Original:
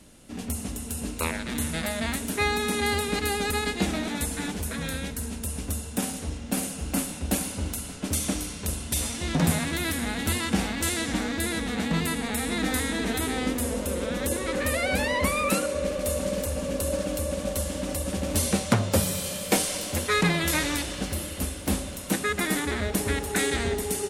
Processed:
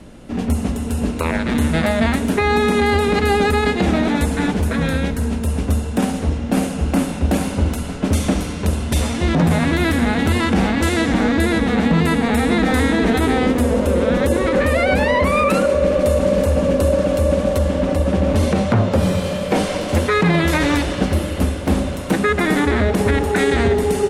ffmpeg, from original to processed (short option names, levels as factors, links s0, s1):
-filter_complex "[0:a]asettb=1/sr,asplit=3[s0][s1][s2];[s0]atrim=end=17.584[s3];[s1]atrim=start=17.58:end=19.89,asetpts=PTS-STARTPTS,afade=t=in:d=0.004:c=qsin,afade=t=out:st=2.306:d=0.004:c=qsin,highshelf=f=5700:g=-8[s4];[s2]atrim=start=19.886[s5];[s3][s4]acrossfade=d=0.004:c1=hsin:c2=qsin[s6];[s6][s5]acrossfade=d=0.004:c1=qsin:c2=hsin,lowpass=f=1300:p=1,bandreject=f=50:t=h:w=6,bandreject=f=100:t=h:w=6,bandreject=f=150:t=h:w=6,bandreject=f=200:t=h:w=6,bandreject=f=250:t=h:w=6,bandreject=f=300:t=h:w=6,alimiter=level_in=10.6:limit=0.891:release=50:level=0:latency=1,volume=0.501"